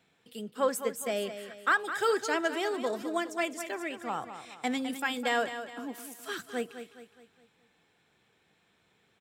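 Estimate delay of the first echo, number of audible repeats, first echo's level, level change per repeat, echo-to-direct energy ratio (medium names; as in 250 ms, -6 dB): 208 ms, 4, -10.5 dB, -7.0 dB, -9.5 dB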